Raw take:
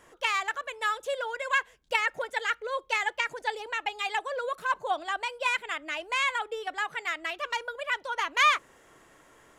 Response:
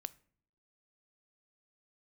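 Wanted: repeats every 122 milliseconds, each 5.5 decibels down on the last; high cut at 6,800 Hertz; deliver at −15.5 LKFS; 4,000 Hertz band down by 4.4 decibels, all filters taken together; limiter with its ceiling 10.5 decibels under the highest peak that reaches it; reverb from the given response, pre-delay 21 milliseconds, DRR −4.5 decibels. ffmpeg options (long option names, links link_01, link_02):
-filter_complex "[0:a]lowpass=6800,equalizer=frequency=4000:width_type=o:gain=-6,alimiter=limit=-23.5dB:level=0:latency=1,aecho=1:1:122|244|366|488|610|732|854:0.531|0.281|0.149|0.079|0.0419|0.0222|0.0118,asplit=2[link_01][link_02];[1:a]atrim=start_sample=2205,adelay=21[link_03];[link_02][link_03]afir=irnorm=-1:irlink=0,volume=8dB[link_04];[link_01][link_04]amix=inputs=2:normalize=0,volume=11dB"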